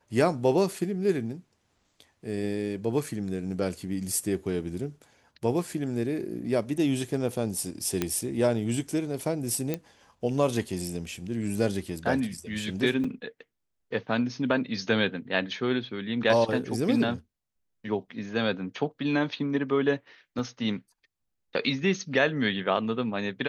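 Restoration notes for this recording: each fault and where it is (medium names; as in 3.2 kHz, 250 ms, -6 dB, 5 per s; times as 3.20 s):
8.02 s: pop -11 dBFS
9.74 s: pop -15 dBFS
13.04 s: dropout 4.4 ms
20.39 s: dropout 2.3 ms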